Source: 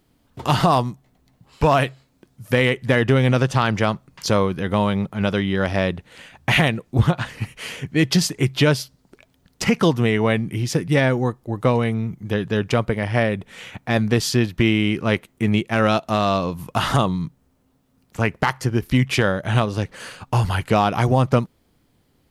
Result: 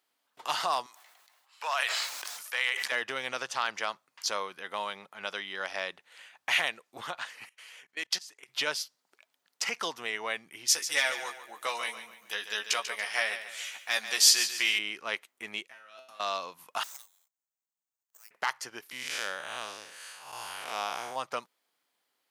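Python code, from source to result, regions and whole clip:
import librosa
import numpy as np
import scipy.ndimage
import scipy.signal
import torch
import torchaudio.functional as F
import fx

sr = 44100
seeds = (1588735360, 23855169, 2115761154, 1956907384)

y = fx.chain(x, sr, fx.highpass(hz=830.0, slope=12),
    fx.sustainer(db_per_s=27.0), at=(0.86, 2.92))
y = fx.chain(y, sr, fx.highpass(hz=390.0, slope=6),
    fx.level_steps(step_db=21), at=(7.49, 8.49))
y = fx.chain(y, sr, fx.tilt_eq(slope=3.5),
    fx.doubler(ms=14.0, db=-5.0),
    fx.echo_feedback(ms=142, feedback_pct=40, wet_db=-11), at=(10.68, 14.79))
y = fx.chain(y, sr, fx.peak_eq(hz=810.0, db=-8.5, octaves=0.57),
    fx.over_compress(threshold_db=-27.0, ratio=-1.0),
    fx.comb_fb(f0_hz=130.0, decay_s=0.48, harmonics='all', damping=0.0, mix_pct=90), at=(15.67, 16.2))
y = fx.chain(y, sr, fx.law_mismatch(coded='A'),
    fx.bandpass_q(hz=8000.0, q=6.7),
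    fx.resample_bad(factor=6, down='none', up='zero_stuff'), at=(16.83, 18.31))
y = fx.chain(y, sr, fx.spec_blur(span_ms=191.0),
    fx.high_shelf(hz=6100.0, db=10.0), at=(18.91, 21.16))
y = scipy.signal.sosfilt(scipy.signal.butter(2, 890.0, 'highpass', fs=sr, output='sos'), y)
y = fx.dynamic_eq(y, sr, hz=5800.0, q=1.2, threshold_db=-42.0, ratio=4.0, max_db=5)
y = y * librosa.db_to_amplitude(-8.0)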